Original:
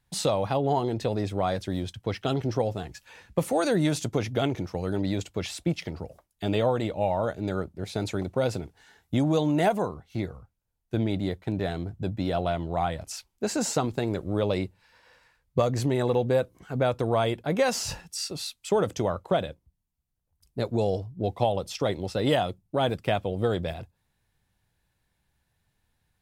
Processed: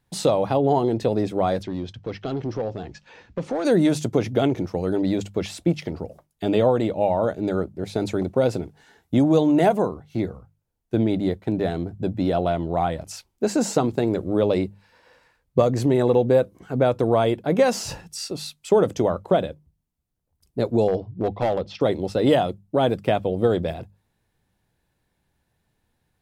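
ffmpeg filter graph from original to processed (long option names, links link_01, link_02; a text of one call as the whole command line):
ffmpeg -i in.wav -filter_complex "[0:a]asettb=1/sr,asplit=3[link_01][link_02][link_03];[link_01]atrim=end=1.634[link_04];[link_02]atrim=start=1.63:end=3.65,asetpts=PTS-STARTPTS,afade=type=in:duration=0.004:curve=qsin,afade=type=out:start_time=2.016:duration=0.004:curve=qsin,acompressor=threshold=-35dB:ratio=1.5:attack=3.2:release=140:knee=1:detection=peak,volume=26.5dB,asoftclip=hard,volume=-26.5dB,lowpass=frequency=6000:width=0.5412,lowpass=frequency=6000:width=1.3066[link_05];[link_03]atrim=start=3.646[link_06];[link_04][link_05]acrossfade=duration=0.004:curve1=hsin:curve2=qsin[link_07];[link_07][link_06]acrossfade=duration=0.004:curve1=qsin:curve2=hsin,asettb=1/sr,asplit=3[link_08][link_09][link_10];[link_08]atrim=end=20.884[link_11];[link_09]atrim=start=20.88:end=21.81,asetpts=PTS-STARTPTS,afade=type=in:duration=0.004:curve=qsin,afade=type=out:start_time=0.926:duration=0.004:curve=qsin,lowpass=frequency=4500:width=0.5412,lowpass=frequency=4500:width=1.3066,asoftclip=type=hard:threshold=-22dB[link_12];[link_10]atrim=start=21.806[link_13];[link_11][link_12]acrossfade=duration=0.004:curve1=hsin:curve2=qsin[link_14];[link_14][link_13]acrossfade=duration=0.004:curve1=qsin:curve2=hsin,equalizer=frequency=330:width=0.47:gain=7.5,bandreject=frequency=50:width_type=h:width=6,bandreject=frequency=100:width_type=h:width=6,bandreject=frequency=150:width_type=h:width=6,bandreject=frequency=200:width_type=h:width=6" out.wav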